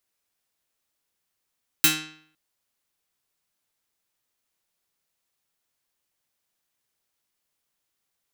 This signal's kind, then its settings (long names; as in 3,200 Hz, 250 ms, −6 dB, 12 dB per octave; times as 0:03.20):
Karplus-Strong string D#3, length 0.51 s, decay 0.61 s, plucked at 0.26, medium